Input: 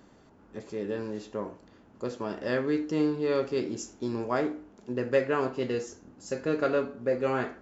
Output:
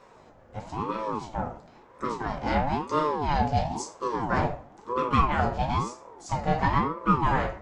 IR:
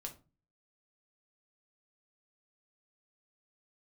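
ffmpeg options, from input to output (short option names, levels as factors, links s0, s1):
-filter_complex "[1:a]atrim=start_sample=2205[s0];[0:a][s0]afir=irnorm=-1:irlink=0,asplit=2[s1][s2];[s2]asetrate=58866,aresample=44100,atempo=0.749154,volume=0.2[s3];[s1][s3]amix=inputs=2:normalize=0,aeval=exprs='val(0)*sin(2*PI*530*n/s+530*0.45/1*sin(2*PI*1*n/s))':c=same,volume=2.66"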